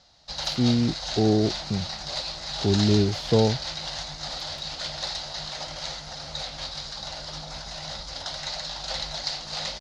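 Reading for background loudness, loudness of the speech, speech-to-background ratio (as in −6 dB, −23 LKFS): −31.5 LKFS, −24.0 LKFS, 7.5 dB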